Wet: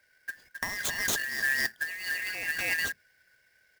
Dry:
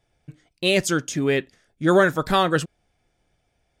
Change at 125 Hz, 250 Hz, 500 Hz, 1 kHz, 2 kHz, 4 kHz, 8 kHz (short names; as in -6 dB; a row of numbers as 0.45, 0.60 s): -23.0, -25.0, -25.5, -19.0, -1.0, -7.0, -2.0 dB